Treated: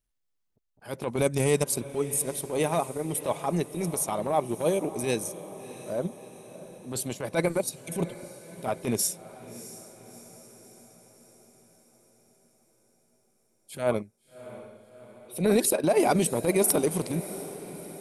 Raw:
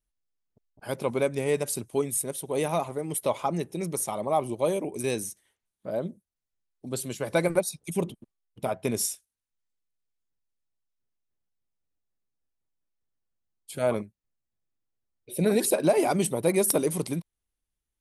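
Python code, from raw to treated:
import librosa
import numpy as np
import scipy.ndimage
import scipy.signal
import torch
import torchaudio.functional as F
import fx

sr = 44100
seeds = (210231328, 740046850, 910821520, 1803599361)

y = fx.bass_treble(x, sr, bass_db=7, treble_db=10, at=(1.16, 1.64))
y = fx.transient(y, sr, attack_db=-11, sustain_db=-7)
y = fx.echo_diffused(y, sr, ms=658, feedback_pct=57, wet_db=-15.0)
y = y * librosa.db_to_amplitude(3.5)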